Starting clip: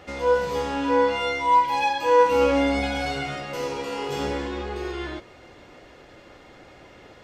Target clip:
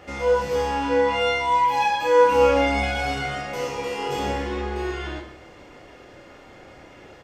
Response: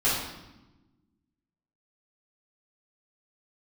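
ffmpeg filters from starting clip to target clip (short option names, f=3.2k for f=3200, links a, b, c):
-filter_complex "[0:a]equalizer=f=3.9k:w=4.2:g=-5,asplit=2[a][b];[b]aecho=0:1:30|67.5|114.4|173|246.2:0.631|0.398|0.251|0.158|0.1[c];[a][c]amix=inputs=2:normalize=0"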